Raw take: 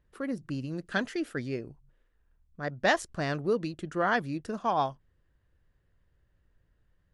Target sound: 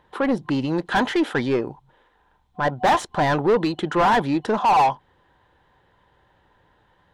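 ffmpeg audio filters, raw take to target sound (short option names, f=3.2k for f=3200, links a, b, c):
-filter_complex "[0:a]superequalizer=9b=3.16:13b=2.24,asplit=2[a][b];[b]highpass=f=720:p=1,volume=31dB,asoftclip=type=tanh:threshold=-6dB[c];[a][c]amix=inputs=2:normalize=0,lowpass=f=1.2k:p=1,volume=-6dB,volume=-2dB"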